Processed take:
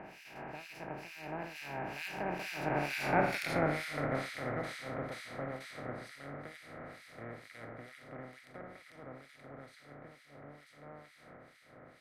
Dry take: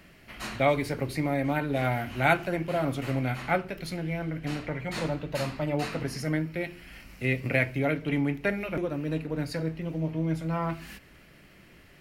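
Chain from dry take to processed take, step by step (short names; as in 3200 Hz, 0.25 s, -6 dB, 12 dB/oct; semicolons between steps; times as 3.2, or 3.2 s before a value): per-bin compression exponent 0.2; Doppler pass-by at 3.39, 38 m/s, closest 20 m; harmonic tremolo 2.2 Hz, depth 100%, crossover 1900 Hz; gain -7.5 dB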